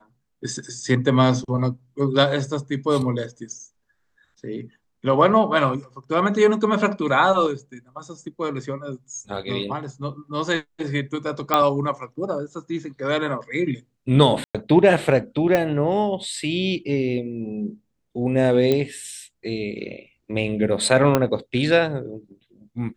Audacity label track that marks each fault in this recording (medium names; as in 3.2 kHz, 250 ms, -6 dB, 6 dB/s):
11.540000	11.540000	pop -4 dBFS
14.440000	14.550000	dropout 106 ms
15.550000	15.550000	pop -7 dBFS
18.720000	18.720000	pop -9 dBFS
21.150000	21.150000	pop -4 dBFS